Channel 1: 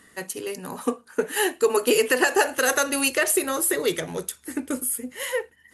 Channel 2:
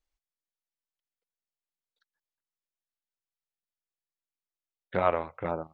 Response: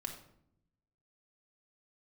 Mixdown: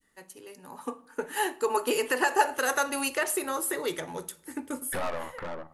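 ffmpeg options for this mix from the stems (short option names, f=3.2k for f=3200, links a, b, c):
-filter_complex "[0:a]agate=range=-33dB:threshold=-53dB:ratio=3:detection=peak,equalizer=f=880:w=7.6:g=8,volume=-18dB,asplit=2[a][b];[b]volume=-9dB[c];[1:a]equalizer=f=1.8k:w=6.3:g=7.5,acompressor=threshold=-34dB:ratio=2,aeval=exprs='(tanh(112*val(0)+0.45)-tanh(0.45))/112':c=same,volume=2dB,asplit=3[d][e][f];[e]volume=-13dB[g];[f]apad=whole_len=252772[h];[a][h]sidechaincompress=threshold=-55dB:ratio=8:attack=16:release=1490[i];[2:a]atrim=start_sample=2205[j];[c][g]amix=inputs=2:normalize=0[k];[k][j]afir=irnorm=-1:irlink=0[l];[i][d][l]amix=inputs=3:normalize=0,adynamicequalizer=threshold=0.00251:dfrequency=1100:dqfactor=1.1:tfrequency=1100:tqfactor=1.1:attack=5:release=100:ratio=0.375:range=2.5:mode=boostabove:tftype=bell,dynaudnorm=f=270:g=7:m=8dB"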